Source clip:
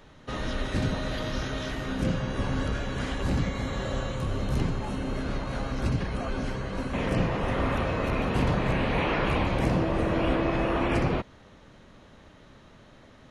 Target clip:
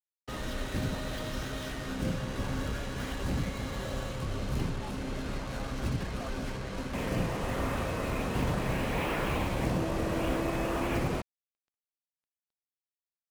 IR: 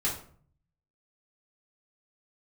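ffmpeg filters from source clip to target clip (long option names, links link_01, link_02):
-af "acrusher=bits=5:mix=0:aa=0.5,volume=-5dB"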